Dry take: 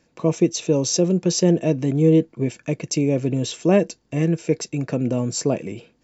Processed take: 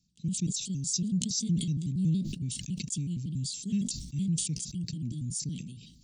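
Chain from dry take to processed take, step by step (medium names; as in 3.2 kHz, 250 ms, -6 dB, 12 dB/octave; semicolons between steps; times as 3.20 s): pitch shift switched off and on +3.5 st, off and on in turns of 93 ms; Chebyshev band-stop 190–3900 Hz, order 3; decay stretcher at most 54 dB/s; trim -6.5 dB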